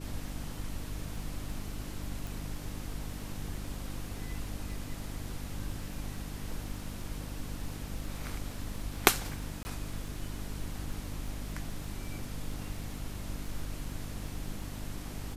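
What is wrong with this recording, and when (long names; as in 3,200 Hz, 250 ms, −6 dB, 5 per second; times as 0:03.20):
surface crackle 15 per second −42 dBFS
mains hum 50 Hz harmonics 6 −42 dBFS
0:02.27: click
0:09.63–0:09.65: drop-out 20 ms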